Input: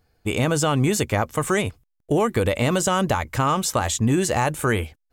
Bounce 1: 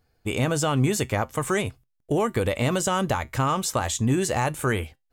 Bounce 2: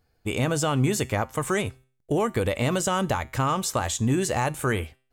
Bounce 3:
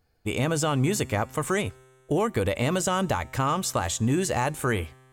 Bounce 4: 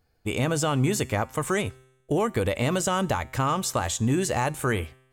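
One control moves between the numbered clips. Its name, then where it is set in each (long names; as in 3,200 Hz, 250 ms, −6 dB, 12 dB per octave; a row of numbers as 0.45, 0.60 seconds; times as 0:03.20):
tuned comb filter, decay: 0.18, 0.42, 2.1, 0.89 seconds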